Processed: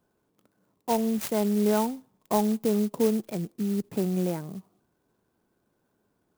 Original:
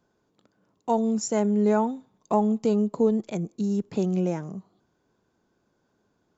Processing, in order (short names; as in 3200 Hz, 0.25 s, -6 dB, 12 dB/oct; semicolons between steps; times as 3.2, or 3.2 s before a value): clock jitter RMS 0.062 ms; gain -2 dB